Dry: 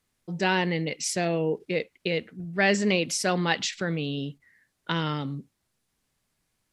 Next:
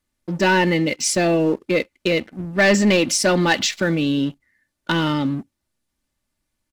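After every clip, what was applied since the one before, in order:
low-shelf EQ 280 Hz +5 dB
comb filter 3.4 ms, depth 50%
leveller curve on the samples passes 2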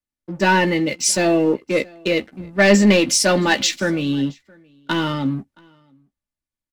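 double-tracking delay 15 ms −8.5 dB
single-tap delay 673 ms −23.5 dB
multiband upward and downward expander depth 40%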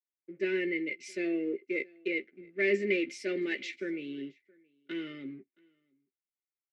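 pair of resonant band-passes 910 Hz, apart 2.5 octaves
level −5.5 dB

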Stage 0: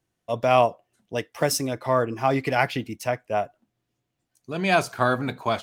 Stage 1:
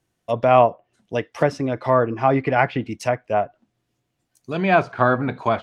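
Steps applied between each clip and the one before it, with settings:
treble cut that deepens with the level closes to 2,000 Hz, closed at −22 dBFS
level +4.5 dB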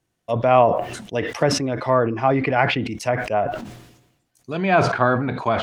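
level that may fall only so fast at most 62 dB per second
level −1 dB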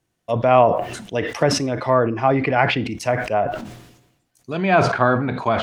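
four-comb reverb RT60 0.34 s, combs from 28 ms, DRR 19.5 dB
level +1 dB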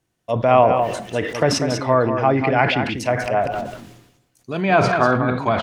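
single-tap delay 194 ms −7.5 dB

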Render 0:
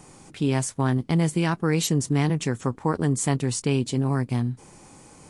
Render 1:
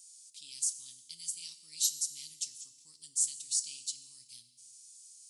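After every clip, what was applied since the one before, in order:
inverse Chebyshev high-pass filter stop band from 1,700 Hz, stop band 50 dB
feedback delay network reverb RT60 1.4 s, low-frequency decay 1.3×, high-frequency decay 0.95×, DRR 10.5 dB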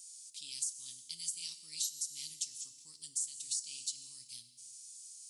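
downward compressor 6 to 1, threshold −37 dBFS, peak gain reduction 12.5 dB
level +3 dB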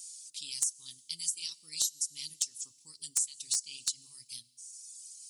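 reverb reduction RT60 1.6 s
in parallel at −6 dB: bit reduction 4 bits
on the sum: level +6 dB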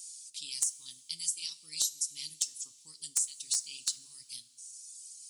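low-shelf EQ 77 Hz −11.5 dB
coupled-rooms reverb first 0.37 s, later 4.1 s, from −19 dB, DRR 12.5 dB

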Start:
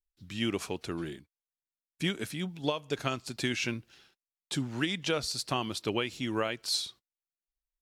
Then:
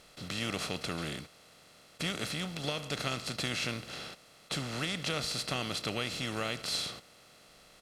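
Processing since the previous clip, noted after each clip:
compressor on every frequency bin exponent 0.4
dynamic equaliser 650 Hz, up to −4 dB, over −37 dBFS, Q 0.7
comb filter 1.5 ms, depth 42%
level −7 dB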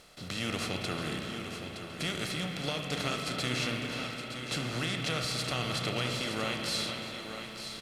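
reversed playback
upward compression, threshold −46 dBFS
reversed playback
single-tap delay 918 ms −9 dB
convolution reverb RT60 4.6 s, pre-delay 32 ms, DRR 2 dB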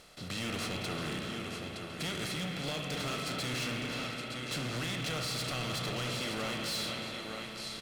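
hard clipping −32 dBFS, distortion −10 dB

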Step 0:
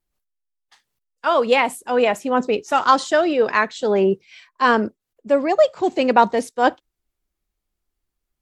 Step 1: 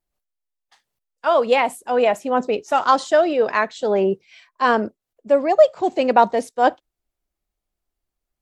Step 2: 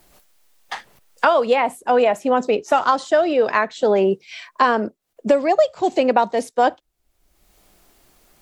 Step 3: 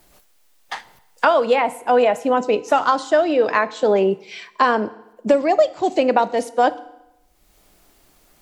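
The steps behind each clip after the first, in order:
parametric band 660 Hz +6 dB 0.77 octaves; level −3 dB
multiband upward and downward compressor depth 100%
feedback delay network reverb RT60 0.91 s, low-frequency decay 1×, high-frequency decay 0.9×, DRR 15 dB

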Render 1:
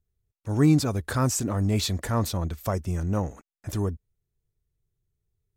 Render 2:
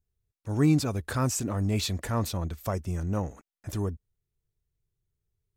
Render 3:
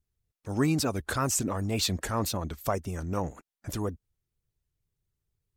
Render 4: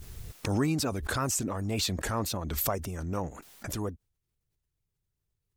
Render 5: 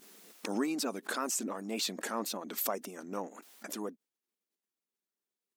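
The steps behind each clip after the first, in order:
dynamic equaliser 2,600 Hz, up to +4 dB, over −52 dBFS, Q 4.1; level −3 dB
harmonic and percussive parts rebalanced percussive +9 dB; tape wow and flutter 82 cents; level −5 dB
background raised ahead of every attack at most 30 dB per second; level −2.5 dB
linear-phase brick-wall high-pass 190 Hz; level −3.5 dB

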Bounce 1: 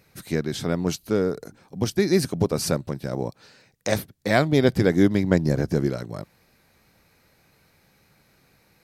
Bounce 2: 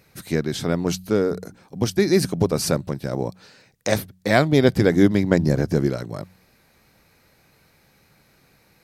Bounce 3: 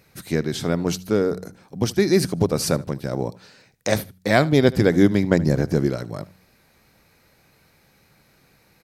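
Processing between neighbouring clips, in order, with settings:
hum removal 92.09 Hz, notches 2; level +2.5 dB
repeating echo 76 ms, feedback 17%, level −20.5 dB

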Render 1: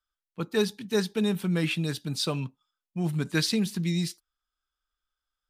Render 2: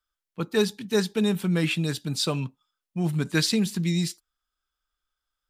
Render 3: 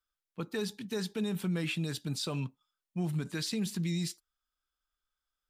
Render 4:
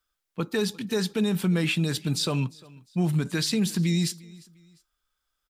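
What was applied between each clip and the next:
dynamic equaliser 7,400 Hz, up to +6 dB, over −60 dBFS, Q 7.9; level +2.5 dB
brickwall limiter −20.5 dBFS, peak gain reduction 10.5 dB; level −5 dB
repeating echo 351 ms, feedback 35%, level −23 dB; level +8.5 dB

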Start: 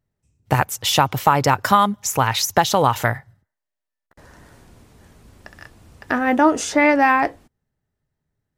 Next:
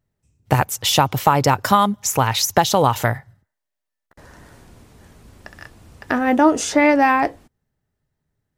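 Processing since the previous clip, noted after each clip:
dynamic equaliser 1,600 Hz, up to −4 dB, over −26 dBFS, Q 0.85
level +2 dB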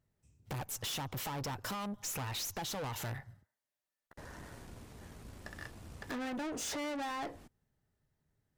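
downward compressor 8 to 1, threshold −22 dBFS, peak gain reduction 13 dB
tube saturation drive 34 dB, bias 0.45
level −2.5 dB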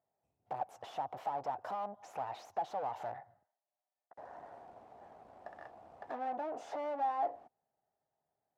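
resonant band-pass 730 Hz, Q 5.5
level +11.5 dB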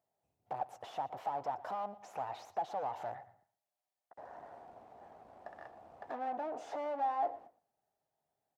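repeating echo 117 ms, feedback 26%, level −18 dB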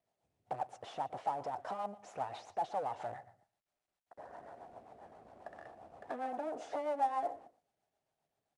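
rotating-speaker cabinet horn 7.5 Hz
level +3.5 dB
IMA ADPCM 88 kbit/s 22,050 Hz

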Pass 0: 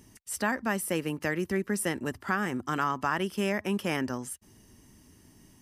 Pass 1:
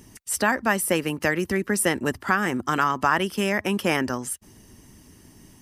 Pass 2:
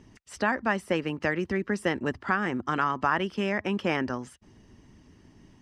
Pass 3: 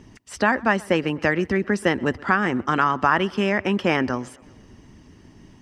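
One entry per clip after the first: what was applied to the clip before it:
harmonic and percussive parts rebalanced percussive +5 dB; level +4 dB
high-frequency loss of the air 150 metres; level −3.5 dB
tape delay 126 ms, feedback 62%, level −23 dB, low-pass 3,700 Hz; level +6.5 dB

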